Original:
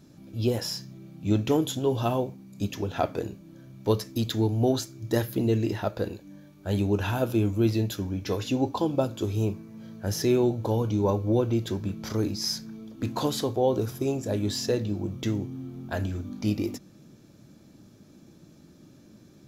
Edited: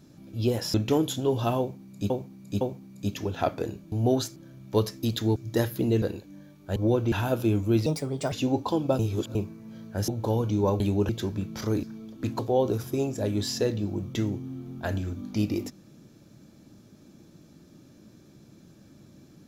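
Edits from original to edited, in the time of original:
0.74–1.33 s: delete
2.18–2.69 s: loop, 3 plays
4.49–4.93 s: move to 3.49 s
5.59–5.99 s: delete
6.73–7.02 s: swap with 11.21–11.57 s
7.76–8.41 s: speed 141%
9.08–9.44 s: reverse
10.17–10.49 s: delete
12.31–12.62 s: delete
13.18–13.47 s: delete

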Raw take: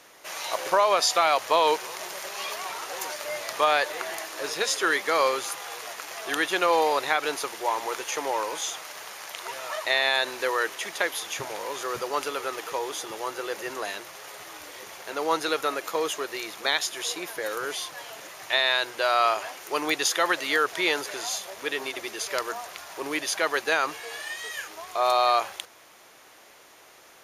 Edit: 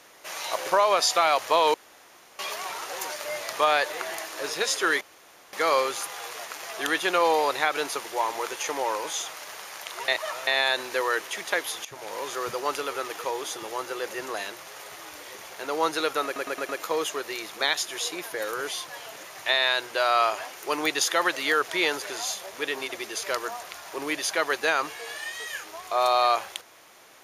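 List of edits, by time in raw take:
1.74–2.39 s: room tone
5.01 s: insert room tone 0.52 s
9.56–9.95 s: reverse
11.33–11.65 s: fade in, from -17 dB
15.73 s: stutter 0.11 s, 5 plays

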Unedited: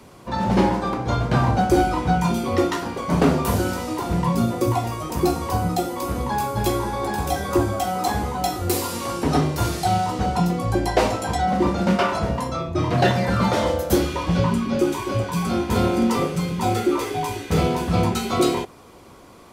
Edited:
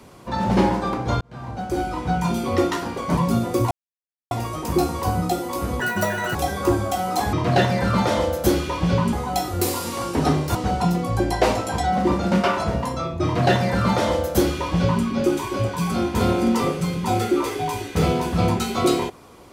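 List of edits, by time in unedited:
1.21–2.48 s: fade in linear
3.17–4.24 s: delete
4.78 s: insert silence 0.60 s
6.27–7.23 s: speed 175%
9.63–10.10 s: delete
12.79–14.59 s: copy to 8.21 s

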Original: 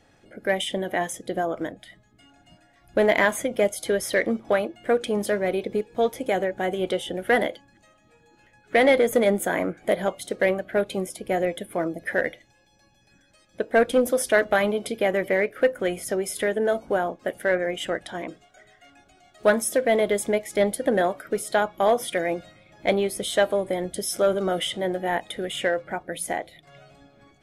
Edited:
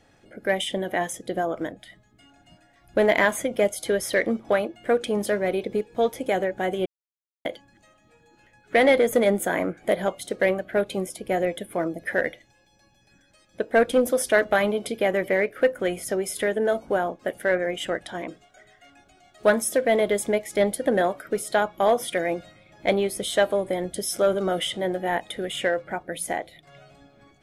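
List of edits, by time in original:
6.86–7.45 s: mute

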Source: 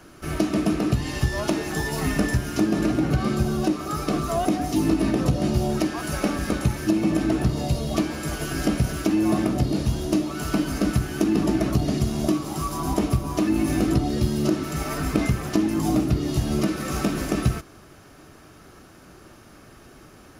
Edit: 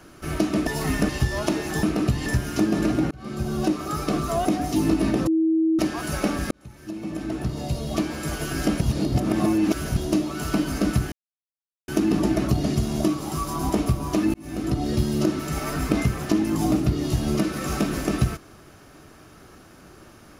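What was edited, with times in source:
0.67–1.10 s: swap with 1.84–2.26 s
3.11–3.65 s: fade in
5.27–5.79 s: bleep 322 Hz -17 dBFS
6.51–8.26 s: fade in
8.81–9.97 s: reverse
11.12 s: insert silence 0.76 s
13.58–14.15 s: fade in

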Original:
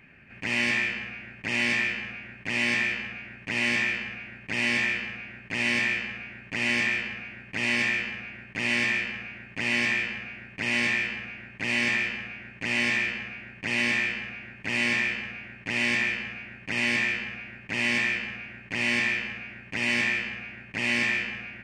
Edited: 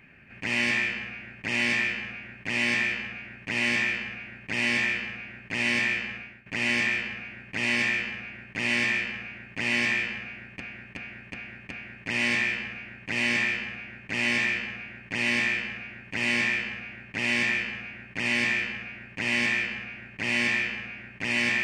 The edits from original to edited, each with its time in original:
6.15–6.46 s: fade out linear, to -14 dB
10.23–10.60 s: loop, 5 plays

